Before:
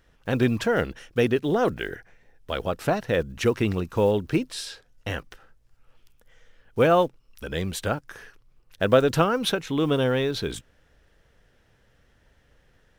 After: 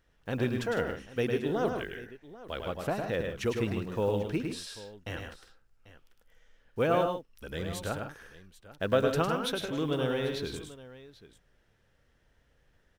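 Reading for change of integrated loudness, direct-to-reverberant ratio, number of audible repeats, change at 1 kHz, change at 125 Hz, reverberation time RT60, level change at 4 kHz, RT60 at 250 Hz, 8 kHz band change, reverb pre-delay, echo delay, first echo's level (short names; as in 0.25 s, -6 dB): -7.0 dB, none, 3, -7.0 dB, -7.0 dB, none, -7.0 dB, none, -7.0 dB, none, 0.105 s, -5.0 dB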